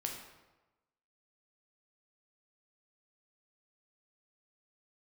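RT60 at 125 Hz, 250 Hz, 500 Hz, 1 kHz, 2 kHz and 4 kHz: 1.2 s, 1.1 s, 1.1 s, 1.1 s, 0.90 s, 0.75 s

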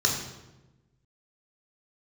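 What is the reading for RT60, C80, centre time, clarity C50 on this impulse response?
1.1 s, 6.5 dB, 39 ms, 4.5 dB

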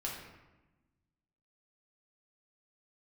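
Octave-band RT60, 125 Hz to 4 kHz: 1.8 s, 1.6 s, 1.1 s, 1.1 s, 0.95 s, 0.70 s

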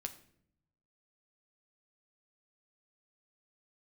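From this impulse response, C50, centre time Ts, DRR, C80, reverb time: 13.5 dB, 7 ms, 5.5 dB, 16.5 dB, 0.65 s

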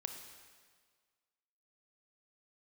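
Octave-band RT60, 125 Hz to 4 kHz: 1.6 s, 1.6 s, 1.7 s, 1.7 s, 1.6 s, 1.5 s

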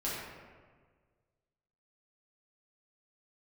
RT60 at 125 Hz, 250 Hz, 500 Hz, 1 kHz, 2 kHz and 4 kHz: 2.0 s, 1.7 s, 1.7 s, 1.5 s, 1.3 s, 0.90 s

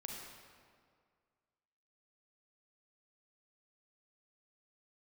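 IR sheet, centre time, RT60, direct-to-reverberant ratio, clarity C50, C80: 90 ms, 2.0 s, -0.5 dB, 0.5 dB, 2.0 dB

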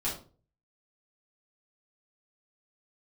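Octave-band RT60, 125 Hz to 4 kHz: 0.65 s, 0.45 s, 0.45 s, 0.35 s, 0.30 s, 0.25 s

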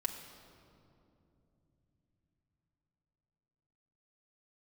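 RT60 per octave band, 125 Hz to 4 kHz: 5.9 s, 4.9 s, 3.4 s, 2.4 s, 1.8 s, 1.6 s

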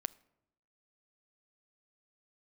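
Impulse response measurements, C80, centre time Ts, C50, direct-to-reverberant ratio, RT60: 24.5 dB, 1 ms, 22.0 dB, 18.5 dB, 0.85 s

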